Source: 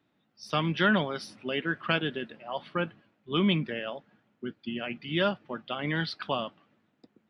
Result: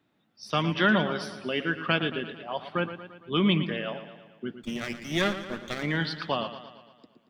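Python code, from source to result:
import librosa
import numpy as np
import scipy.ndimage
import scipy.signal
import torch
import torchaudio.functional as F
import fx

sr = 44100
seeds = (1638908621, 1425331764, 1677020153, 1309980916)

y = fx.lower_of_two(x, sr, delay_ms=0.52, at=(4.58, 5.83))
y = fx.echo_warbled(y, sr, ms=114, feedback_pct=57, rate_hz=2.8, cents=64, wet_db=-11.5)
y = F.gain(torch.from_numpy(y), 1.5).numpy()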